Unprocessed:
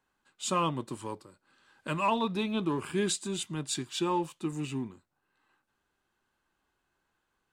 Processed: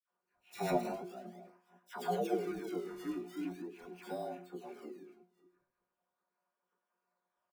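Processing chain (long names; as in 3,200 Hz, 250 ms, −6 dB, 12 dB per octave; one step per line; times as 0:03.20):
delay that plays each chunk backwards 244 ms, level −8.5 dB
single-sideband voice off tune +120 Hz 290–3,200 Hz
resonances in every octave D#, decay 0.29 s
phase-vocoder pitch shift with formants kept −9.5 semitones
in parallel at −5.5 dB: sample-and-hold swept by an LFO 19×, swing 100% 0.41 Hz
on the sum: all-pass dispersion lows, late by 98 ms, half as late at 1,400 Hz
on a send: single-tap delay 106 ms −15.5 dB
on the sum: level +11 dB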